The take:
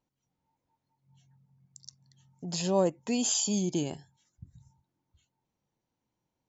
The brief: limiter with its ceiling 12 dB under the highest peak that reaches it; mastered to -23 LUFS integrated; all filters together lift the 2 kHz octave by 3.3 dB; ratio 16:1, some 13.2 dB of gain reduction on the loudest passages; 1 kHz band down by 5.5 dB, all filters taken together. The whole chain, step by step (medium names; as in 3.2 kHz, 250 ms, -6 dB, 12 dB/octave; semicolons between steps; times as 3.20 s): peaking EQ 1 kHz -8.5 dB; peaking EQ 2 kHz +6.5 dB; compression 16:1, threshold -36 dBFS; trim +24.5 dB; peak limiter -12.5 dBFS